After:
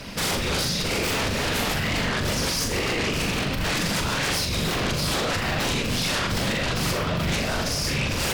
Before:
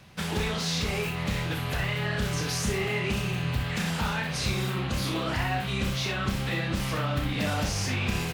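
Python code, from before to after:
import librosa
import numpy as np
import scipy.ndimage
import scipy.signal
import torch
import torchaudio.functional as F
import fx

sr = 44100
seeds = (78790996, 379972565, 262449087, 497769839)

y = fx.graphic_eq_31(x, sr, hz=(315, 500, 800, 5000), db=(-12, 8, -6, 7))
y = fx.over_compress(y, sr, threshold_db=-31.0, ratio=-0.5)
y = fx.whisperise(y, sr, seeds[0])
y = fx.fold_sine(y, sr, drive_db=15, ceiling_db=-15.5)
y = fx.room_flutter(y, sr, wall_m=7.0, rt60_s=0.38)
y = y * librosa.db_to_amplitude(-7.0)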